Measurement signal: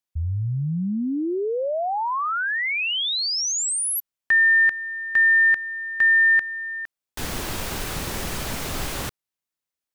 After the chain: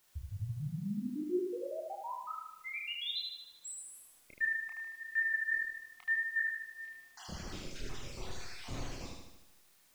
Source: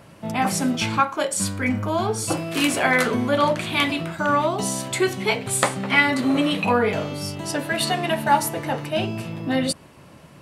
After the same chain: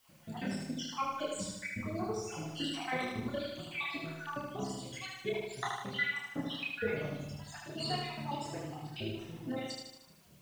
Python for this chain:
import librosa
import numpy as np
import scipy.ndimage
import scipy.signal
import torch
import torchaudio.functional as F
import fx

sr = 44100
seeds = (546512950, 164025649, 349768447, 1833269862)

p1 = fx.spec_dropout(x, sr, seeds[0], share_pct=64)
p2 = scipy.signal.sosfilt(scipy.signal.butter(4, 6700.0, 'lowpass', fs=sr, output='sos'), p1)
p3 = fx.dereverb_blind(p2, sr, rt60_s=1.3)
p4 = fx.peak_eq(p3, sr, hz=1300.0, db=-5.0, octaves=2.4)
p5 = fx.quant_dither(p4, sr, seeds[1], bits=8, dither='triangular')
p6 = p4 + (p5 * 10.0 ** (-8.0 / 20.0))
p7 = fx.comb_fb(p6, sr, f0_hz=360.0, decay_s=0.67, harmonics='all', damping=0.6, mix_pct=70)
p8 = fx.chorus_voices(p7, sr, voices=4, hz=0.53, base_ms=29, depth_ms=4.1, mix_pct=45)
y = fx.echo_feedback(p8, sr, ms=76, feedback_pct=57, wet_db=-3.0)